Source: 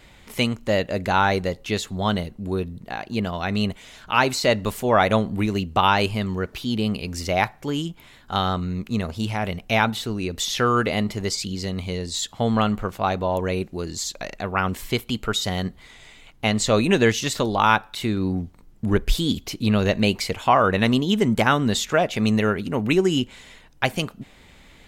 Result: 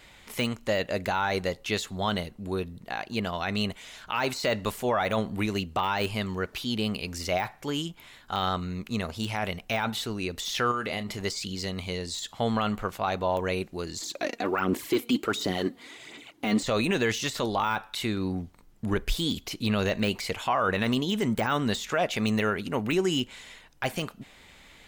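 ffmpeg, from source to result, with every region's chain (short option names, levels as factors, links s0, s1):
-filter_complex "[0:a]asettb=1/sr,asplit=3[s0][s1][s2];[s0]atrim=end=10.714[s3];[s1]atrim=start=10.71:end=11.19,asetpts=PTS-STARTPTS,afade=t=in:d=0.004:c=qsin,afade=t=out:st=0.476:d=0.004:c=qsin,acompressor=threshold=0.0708:ratio=10:attack=3.2:release=140:knee=1:detection=peak,asplit=2[s4][s5];[s5]adelay=30,volume=0.237[s6];[s4][s6]amix=inputs=2:normalize=0,atrim=end_sample=21168[s7];[s2]atrim=start=11.186[s8];[s3][s7]acrossfade=d=0.004:c1=hsin:c2=qsin[s9];[s9][s8]acrossfade=d=0.004:c1=qsin:c2=hsin,asettb=1/sr,asplit=3[s10][s11][s12];[s10]atrim=end=14.014[s13];[s11]atrim=start=14.01:end=16.63,asetpts=PTS-STARTPTS,afade=t=in:d=0.004:c=qsin,afade=t=out:st=2.616:d=0.004:c=qsin,highpass=130,equalizer=f=320:w=1.6:g=14,aphaser=in_gain=1:out_gain=1:delay=4.3:decay=0.53:speed=1.4:type=sinusoidal[s14];[s12]atrim=start=16.626[s15];[s13][s14]acrossfade=d=0.004:c1=hsin:c2=qsin[s16];[s16][s15]acrossfade=d=0.004:c1=qsin:c2=hsin,deesser=0.65,lowshelf=f=490:g=-7.5,alimiter=limit=0.158:level=0:latency=1:release=12"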